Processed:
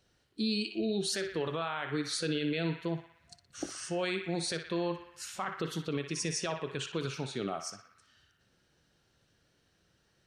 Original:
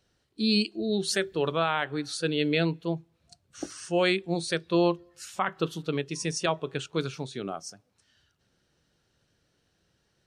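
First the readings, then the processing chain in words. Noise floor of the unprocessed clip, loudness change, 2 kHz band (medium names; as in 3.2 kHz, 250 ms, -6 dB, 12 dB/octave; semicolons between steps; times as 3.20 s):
-73 dBFS, -6.0 dB, -6.5 dB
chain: peak limiter -23.5 dBFS, peak gain reduction 10.5 dB; band-passed feedback delay 60 ms, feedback 75%, band-pass 1.8 kHz, level -6 dB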